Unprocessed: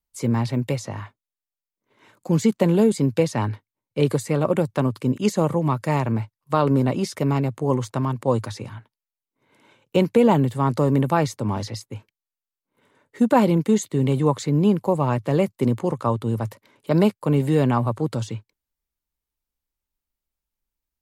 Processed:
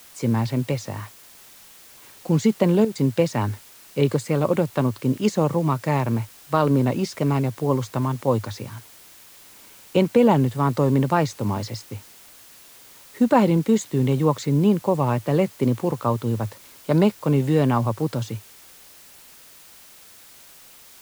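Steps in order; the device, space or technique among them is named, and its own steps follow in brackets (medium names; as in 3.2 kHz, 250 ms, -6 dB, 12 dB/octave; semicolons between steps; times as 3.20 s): worn cassette (low-pass 7.7 kHz; wow and flutter; level dips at 2.85 s, 103 ms -10 dB; white noise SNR 25 dB)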